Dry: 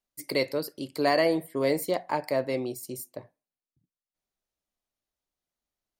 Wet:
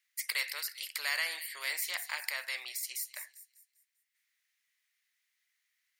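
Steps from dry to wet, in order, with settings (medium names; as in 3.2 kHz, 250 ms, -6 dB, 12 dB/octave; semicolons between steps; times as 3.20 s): ladder high-pass 1.8 kHz, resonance 70%; feedback echo behind a high-pass 198 ms, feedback 37%, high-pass 5.5 kHz, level -13 dB; spectrum-flattening compressor 2:1; trim +5 dB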